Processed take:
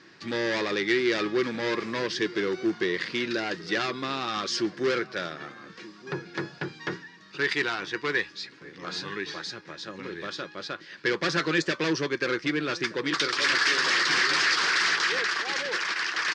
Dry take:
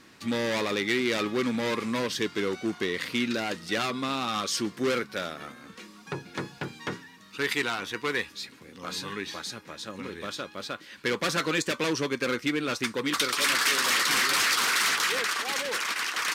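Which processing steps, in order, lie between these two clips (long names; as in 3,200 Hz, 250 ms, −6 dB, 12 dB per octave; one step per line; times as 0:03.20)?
loudspeaker in its box 100–6,100 Hz, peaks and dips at 160 Hz +6 dB, 240 Hz −7 dB, 350 Hz +8 dB, 1,700 Hz +7 dB, 4,900 Hz +5 dB
slap from a distant wall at 210 metres, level −18 dB
level −1.5 dB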